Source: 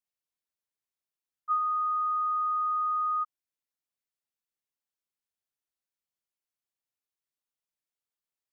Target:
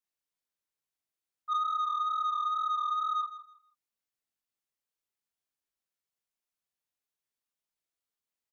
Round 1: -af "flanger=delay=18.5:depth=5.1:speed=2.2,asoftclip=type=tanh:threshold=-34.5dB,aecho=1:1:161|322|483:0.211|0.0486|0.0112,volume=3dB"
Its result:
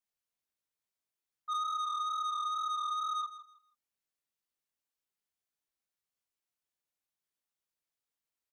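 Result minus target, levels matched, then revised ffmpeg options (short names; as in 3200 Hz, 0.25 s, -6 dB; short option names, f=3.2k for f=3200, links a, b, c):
soft clip: distortion +7 dB
-af "flanger=delay=18.5:depth=5.1:speed=2.2,asoftclip=type=tanh:threshold=-28dB,aecho=1:1:161|322|483:0.211|0.0486|0.0112,volume=3dB"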